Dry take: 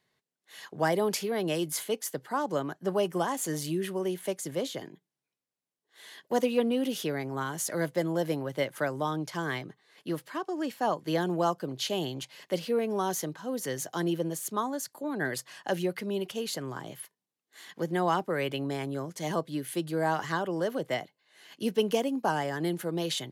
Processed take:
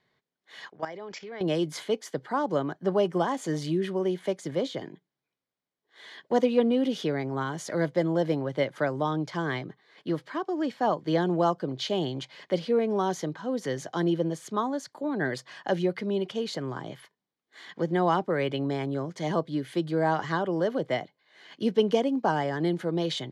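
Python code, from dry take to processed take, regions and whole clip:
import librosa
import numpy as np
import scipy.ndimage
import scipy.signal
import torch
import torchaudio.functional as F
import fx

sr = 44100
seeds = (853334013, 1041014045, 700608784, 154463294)

y = fx.chain(x, sr, fx.level_steps(step_db=12),
    fx.cheby_ripple(hz=7500.0, ripple_db=6),
    fx.low_shelf(hz=160.0, db=-12.0), at=(0.7, 1.41))
y = scipy.signal.sosfilt(scipy.signal.butter(2, 4000.0, 'lowpass', fs=sr, output='sos'), y)
y = fx.notch(y, sr, hz=2700.0, q=9.4)
y = fx.dynamic_eq(y, sr, hz=1600.0, q=0.71, threshold_db=-43.0, ratio=4.0, max_db=-3)
y = y * 10.0 ** (4.0 / 20.0)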